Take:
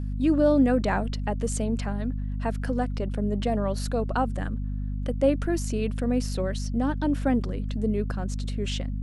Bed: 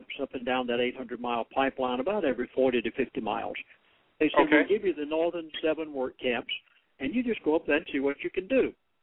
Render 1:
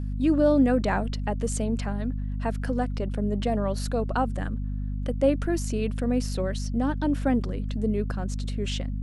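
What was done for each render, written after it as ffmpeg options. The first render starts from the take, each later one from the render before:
-af anull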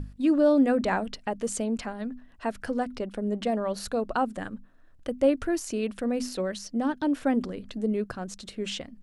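-af "bandreject=f=50:t=h:w=6,bandreject=f=100:t=h:w=6,bandreject=f=150:t=h:w=6,bandreject=f=200:t=h:w=6,bandreject=f=250:t=h:w=6"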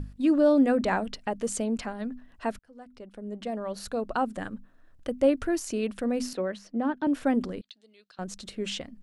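-filter_complex "[0:a]asettb=1/sr,asplit=3[a][b][c];[a]atrim=end=6.334[d];[b]atrim=start=6.33:end=7.07,asetpts=PTS-STARTPTS,afade=t=in:d=0.004:c=qsin,afade=t=out:st=0.736:d=0.004:c=qsin,acrossover=split=160 2900:gain=0.224 1 0.2[e][f][g];[e][f][g]amix=inputs=3:normalize=0[h];[c]atrim=start=7.066[i];[d][h]acrossfade=d=0.004:c1=hsin:c2=qsin[j];[j][i]acrossfade=d=0.004:c1=qsin:c2=hsin,asettb=1/sr,asplit=3[k][l][m];[k]atrim=end=7.614[n];[l]atrim=start=7.61:end=8.19,asetpts=PTS-STARTPTS,afade=t=in:d=0.004:c=qsin,afade=t=out:st=0.576:d=0.004:c=qsin,bandpass=f=3.9k:t=q:w=3.4[o];[m]atrim=start=8.186[p];[n][o]acrossfade=d=0.004:c1=hsin:c2=qsin[q];[q][p]acrossfade=d=0.004:c1=qsin:c2=hsin,asplit=2[r][s];[r]atrim=end=2.59,asetpts=PTS-STARTPTS,afade=t=out:st=2.586:d=0.004:c=hsin[t];[s]atrim=start=2.59,asetpts=PTS-STARTPTS,afade=t=in:d=1.82[u];[t][u]concat=n=2:v=0:a=1"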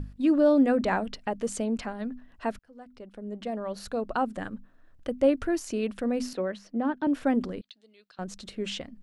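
-af "equalizer=f=9.7k:w=0.65:g=-4.5"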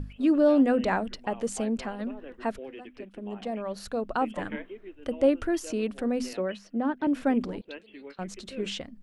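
-filter_complex "[1:a]volume=-17dB[a];[0:a][a]amix=inputs=2:normalize=0"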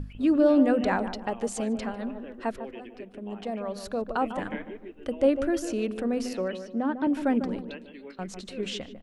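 -filter_complex "[0:a]asplit=2[a][b];[b]adelay=149,lowpass=f=1k:p=1,volume=-8.5dB,asplit=2[c][d];[d]adelay=149,lowpass=f=1k:p=1,volume=0.43,asplit=2[e][f];[f]adelay=149,lowpass=f=1k:p=1,volume=0.43,asplit=2[g][h];[h]adelay=149,lowpass=f=1k:p=1,volume=0.43,asplit=2[i][j];[j]adelay=149,lowpass=f=1k:p=1,volume=0.43[k];[a][c][e][g][i][k]amix=inputs=6:normalize=0"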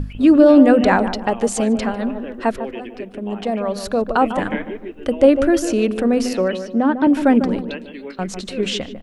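-af "volume=11dB,alimiter=limit=-2dB:level=0:latency=1"

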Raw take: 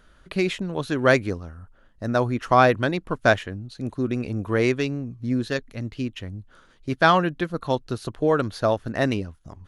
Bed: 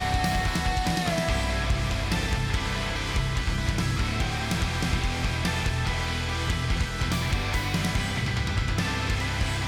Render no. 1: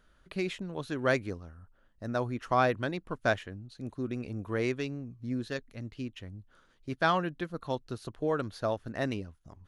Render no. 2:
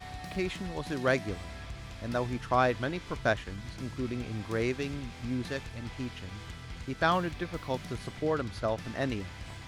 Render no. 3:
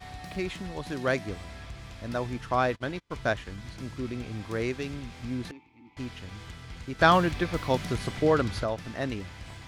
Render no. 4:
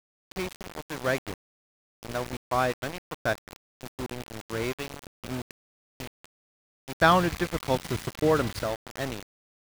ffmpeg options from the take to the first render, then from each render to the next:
-af "volume=-9.5dB"
-filter_complex "[1:a]volume=-17dB[a];[0:a][a]amix=inputs=2:normalize=0"
-filter_complex "[0:a]asplit=3[a][b][c];[a]afade=t=out:st=2.68:d=0.02[d];[b]agate=range=-30dB:threshold=-36dB:ratio=16:release=100:detection=peak,afade=t=in:st=2.68:d=0.02,afade=t=out:st=3.1:d=0.02[e];[c]afade=t=in:st=3.1:d=0.02[f];[d][e][f]amix=inputs=3:normalize=0,asettb=1/sr,asplit=3[g][h][i];[g]atrim=end=5.514[j];[h]atrim=start=5.51:end=5.97,asetpts=PTS-STARTPTS,afade=t=in:d=0.004:c=qsin,afade=t=out:st=0.456:d=0.004:c=qsin,asplit=3[k][l][m];[k]bandpass=f=300:t=q:w=8,volume=0dB[n];[l]bandpass=f=870:t=q:w=8,volume=-6dB[o];[m]bandpass=f=2.24k:t=q:w=8,volume=-9dB[p];[n][o][p]amix=inputs=3:normalize=0[q];[i]atrim=start=5.966[r];[j][q]acrossfade=d=0.004:c1=hsin:c2=qsin[s];[s][r]acrossfade=d=0.004:c1=qsin:c2=hsin,asettb=1/sr,asplit=3[t][u][v];[t]atrim=end=6.994[w];[u]atrim=start=6.99:end=8.64,asetpts=PTS-STARTPTS,afade=t=in:d=0.004:c=qsin,afade=t=out:st=1.646:d=0.004:c=qsin,acontrast=83[x];[v]atrim=start=8.636[y];[w][x]acrossfade=d=0.004:c1=hsin:c2=qsin[z];[z][y]acrossfade=d=0.004:c1=qsin:c2=hsin"
-af "aeval=exprs='val(0)*gte(abs(val(0)),0.0299)':c=same"

